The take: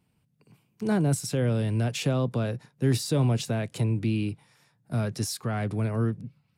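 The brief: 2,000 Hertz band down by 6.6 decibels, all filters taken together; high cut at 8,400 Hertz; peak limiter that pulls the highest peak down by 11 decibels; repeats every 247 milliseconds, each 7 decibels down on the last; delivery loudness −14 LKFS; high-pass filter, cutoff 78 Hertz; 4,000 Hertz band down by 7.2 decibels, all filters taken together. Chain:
high-pass filter 78 Hz
low-pass filter 8,400 Hz
parametric band 2,000 Hz −7.5 dB
parametric band 4,000 Hz −7.5 dB
brickwall limiter −24.5 dBFS
repeating echo 247 ms, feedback 45%, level −7 dB
level +18.5 dB

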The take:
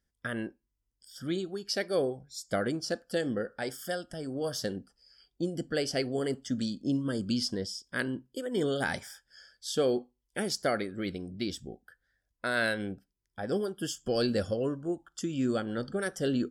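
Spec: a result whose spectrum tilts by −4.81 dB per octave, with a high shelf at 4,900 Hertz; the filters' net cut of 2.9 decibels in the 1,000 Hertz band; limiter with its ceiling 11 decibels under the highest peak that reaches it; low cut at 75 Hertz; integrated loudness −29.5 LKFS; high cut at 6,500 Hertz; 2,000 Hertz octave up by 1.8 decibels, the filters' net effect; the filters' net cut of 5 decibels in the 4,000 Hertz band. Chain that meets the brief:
high-pass filter 75 Hz
low-pass filter 6,500 Hz
parametric band 1,000 Hz −7 dB
parametric band 2,000 Hz +7 dB
parametric band 4,000 Hz −5 dB
high-shelf EQ 4,900 Hz −4 dB
level +8 dB
brickwall limiter −18.5 dBFS

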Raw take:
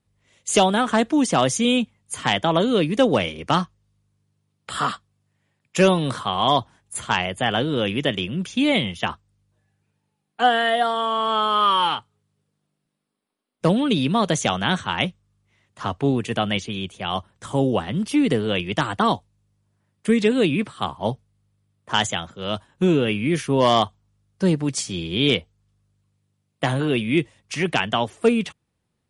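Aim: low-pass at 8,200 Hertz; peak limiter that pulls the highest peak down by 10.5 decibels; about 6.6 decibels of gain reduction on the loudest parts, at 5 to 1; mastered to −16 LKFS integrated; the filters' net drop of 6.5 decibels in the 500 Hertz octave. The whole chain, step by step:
low-pass filter 8,200 Hz
parametric band 500 Hz −8.5 dB
downward compressor 5 to 1, threshold −23 dBFS
level +14 dB
brickwall limiter −5 dBFS

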